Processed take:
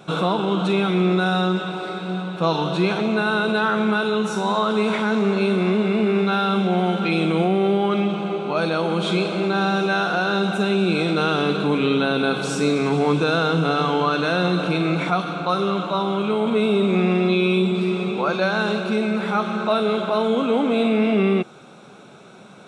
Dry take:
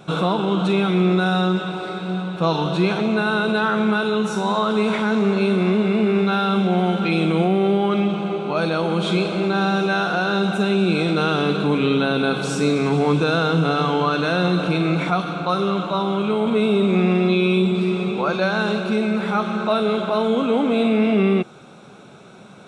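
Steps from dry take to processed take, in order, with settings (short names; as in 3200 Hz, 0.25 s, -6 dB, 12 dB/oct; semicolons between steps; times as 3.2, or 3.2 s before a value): low shelf 83 Hz -11.5 dB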